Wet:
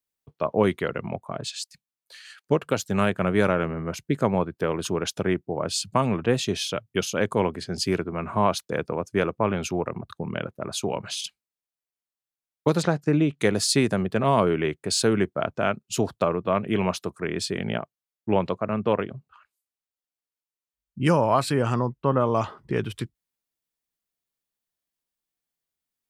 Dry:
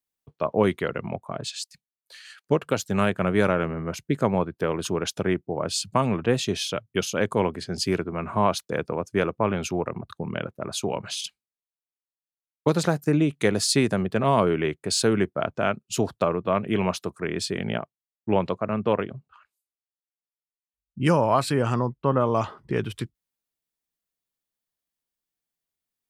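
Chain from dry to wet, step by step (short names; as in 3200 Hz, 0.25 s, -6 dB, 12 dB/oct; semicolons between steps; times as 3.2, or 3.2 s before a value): 12.82–13.39 LPF 5100 Hz 12 dB/oct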